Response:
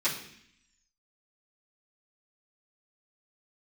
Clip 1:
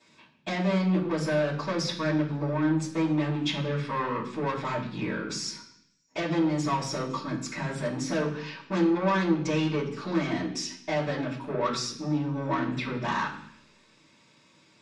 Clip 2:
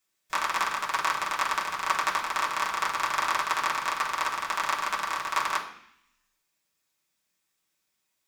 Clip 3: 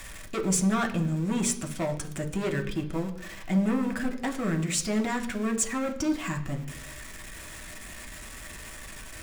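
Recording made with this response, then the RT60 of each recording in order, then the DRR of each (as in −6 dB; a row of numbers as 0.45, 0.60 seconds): 1; 0.65, 0.65, 0.65 seconds; −12.5, −4.5, 2.0 decibels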